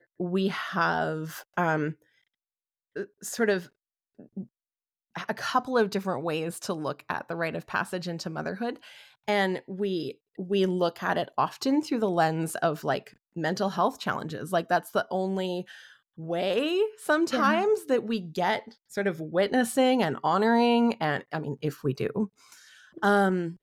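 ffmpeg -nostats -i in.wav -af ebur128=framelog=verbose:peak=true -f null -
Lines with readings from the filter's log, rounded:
Integrated loudness:
  I:         -27.7 LUFS
  Threshold: -38.3 LUFS
Loudness range:
  LRA:         6.5 LU
  Threshold: -48.5 LUFS
  LRA low:   -32.1 LUFS
  LRA high:  -25.6 LUFS
True peak:
  Peak:      -11.0 dBFS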